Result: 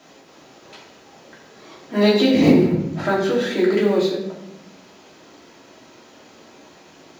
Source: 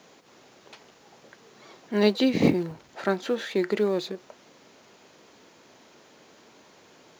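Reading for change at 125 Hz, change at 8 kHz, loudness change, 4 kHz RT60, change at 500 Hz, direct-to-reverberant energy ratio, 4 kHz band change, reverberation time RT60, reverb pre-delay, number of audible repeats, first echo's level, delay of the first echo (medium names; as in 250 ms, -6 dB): +8.5 dB, no reading, +7.5 dB, 0.60 s, +7.5 dB, -5.5 dB, +7.0 dB, 0.80 s, 3 ms, no echo, no echo, no echo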